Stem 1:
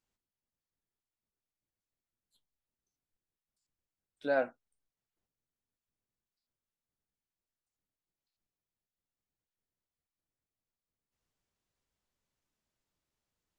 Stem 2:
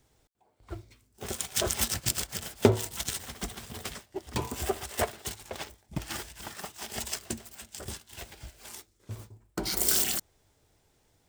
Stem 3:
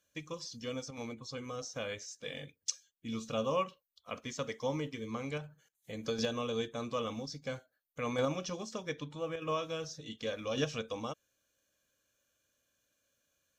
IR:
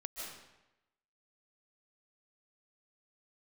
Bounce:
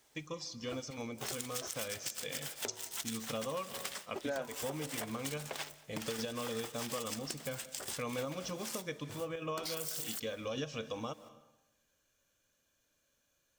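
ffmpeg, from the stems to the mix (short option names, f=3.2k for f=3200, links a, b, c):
-filter_complex "[0:a]volume=2.5dB[a];[1:a]highpass=f=830:p=1,acompressor=threshold=-38dB:ratio=6,volume=2.5dB,asplit=2[b][c];[c]volume=-17.5dB[d];[2:a]volume=-0.5dB,asplit=2[e][f];[f]volume=-12.5dB[g];[3:a]atrim=start_sample=2205[h];[d][g]amix=inputs=2:normalize=0[i];[i][h]afir=irnorm=-1:irlink=0[j];[a][b][e][j]amix=inputs=4:normalize=0,acompressor=threshold=-35dB:ratio=6"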